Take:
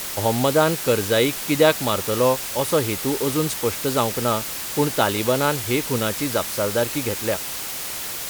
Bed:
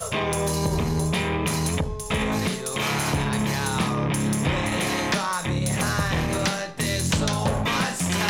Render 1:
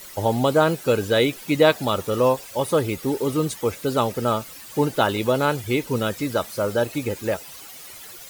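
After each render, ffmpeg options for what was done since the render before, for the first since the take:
-af "afftdn=nr=14:nf=-30"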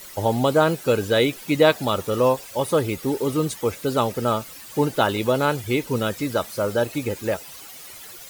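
-af anull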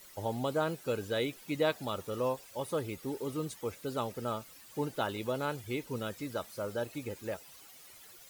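-af "volume=0.211"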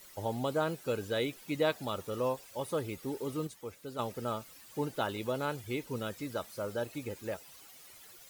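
-filter_complex "[0:a]asplit=3[s0][s1][s2];[s0]atrim=end=3.472[s3];[s1]atrim=start=3.468:end=3.992,asetpts=PTS-STARTPTS,volume=0.501[s4];[s2]atrim=start=3.988[s5];[s3][s4]acrossfade=d=0.004:c1=hsin:c2=hsin[s6];[s6][s5]acrossfade=d=0.004:c1=hsin:c2=hsin"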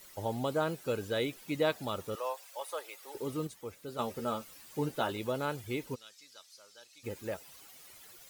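-filter_complex "[0:a]asettb=1/sr,asplit=3[s0][s1][s2];[s0]atrim=end=2.154[s3];[s1]atrim=start=2.15:end=3.15,asetpts=PTS-STARTPTS,afade=t=in:d=0.004:c=qsin,afade=t=out:st=0.996:d=0.004:c=qsin,highpass=f=590:w=0.5412,highpass=f=590:w=1.3066[s4];[s2]atrim=start=3.146[s5];[s3][s4]acrossfade=d=0.004:c1=hsin:c2=qsin[s6];[s6][s5]acrossfade=d=0.004:c1=qsin:c2=hsin,asettb=1/sr,asplit=3[s7][s8][s9];[s7]atrim=end=3.874[s10];[s8]atrim=start=3.87:end=5.12,asetpts=PTS-STARTPTS,afade=t=in:d=0.004:c=qsin,afade=t=out:st=1.246:d=0.004:c=qsin,asplit=2[s11][s12];[s12]adelay=13,volume=0.473[s13];[s11][s13]amix=inputs=2:normalize=0,atrim=end_sample=55125[s14];[s9]atrim=start=5.116[s15];[s10][s14]acrossfade=d=0.004:c1=hsin:c2=qsin[s16];[s16][s15]acrossfade=d=0.004:c1=qsin:c2=hsin,asplit=3[s17][s18][s19];[s17]afade=t=out:st=5.94:d=0.02[s20];[s18]bandpass=f=5200:t=q:w=1.8,afade=t=in:st=5.94:d=0.02,afade=t=out:st=7.03:d=0.02[s21];[s19]afade=t=in:st=7.03:d=0.02[s22];[s20][s21][s22]amix=inputs=3:normalize=0"

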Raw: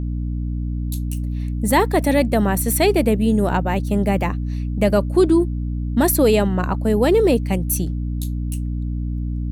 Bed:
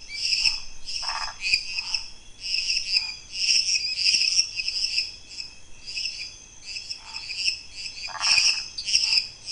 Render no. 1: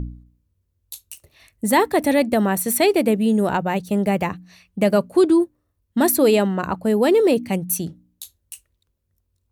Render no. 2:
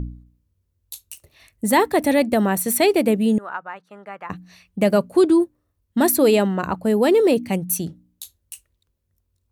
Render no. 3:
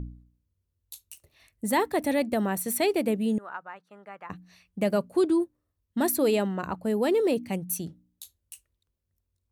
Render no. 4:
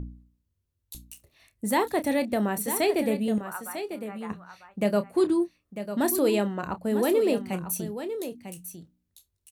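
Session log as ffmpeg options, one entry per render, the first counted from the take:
-af "bandreject=f=60:t=h:w=4,bandreject=f=120:t=h:w=4,bandreject=f=180:t=h:w=4,bandreject=f=240:t=h:w=4,bandreject=f=300:t=h:w=4"
-filter_complex "[0:a]asettb=1/sr,asplit=3[s0][s1][s2];[s0]atrim=end=3.384[s3];[s1]atrim=start=3.38:end=4.3,asetpts=PTS-STARTPTS,afade=t=in:d=0.004:c=qsin,afade=t=out:st=0.916:d=0.004:c=qsin,bandpass=f=1300:t=q:w=3.4[s4];[s2]atrim=start=4.296[s5];[s3][s4]acrossfade=d=0.004:c1=hsin:c2=qsin[s6];[s6][s5]acrossfade=d=0.004:c1=qsin:c2=hsin"
-af "volume=0.398"
-filter_complex "[0:a]asplit=2[s0][s1];[s1]adelay=29,volume=0.266[s2];[s0][s2]amix=inputs=2:normalize=0,asplit=2[s3][s4];[s4]aecho=0:1:948:0.316[s5];[s3][s5]amix=inputs=2:normalize=0"

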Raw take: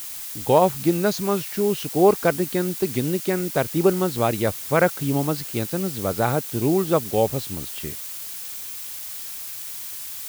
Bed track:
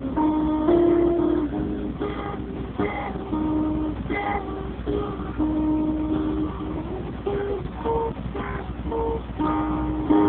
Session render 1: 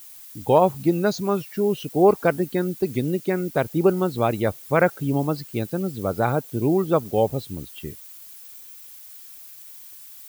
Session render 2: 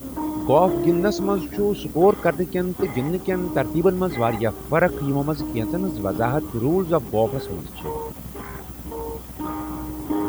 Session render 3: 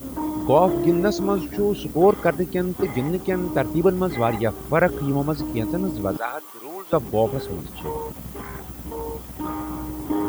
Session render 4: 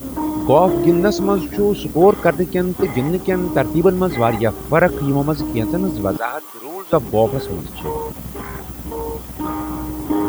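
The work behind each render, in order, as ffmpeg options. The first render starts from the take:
-af "afftdn=nr=13:nf=-34"
-filter_complex "[1:a]volume=0.501[s0];[0:a][s0]amix=inputs=2:normalize=0"
-filter_complex "[0:a]asettb=1/sr,asplit=3[s0][s1][s2];[s0]atrim=end=6.174[s3];[s1]atrim=start=6.17:end=6.93,asetpts=PTS-STARTPTS,afade=t=in:d=0.004:c=qsin,afade=t=out:st=0.756:d=0.004:c=qsin,highpass=920[s4];[s2]atrim=start=6.926[s5];[s3][s4]acrossfade=d=0.004:c1=hsin:c2=qsin[s6];[s6][s5]acrossfade=d=0.004:c1=qsin:c2=hsin"
-af "volume=1.78,alimiter=limit=0.794:level=0:latency=1"

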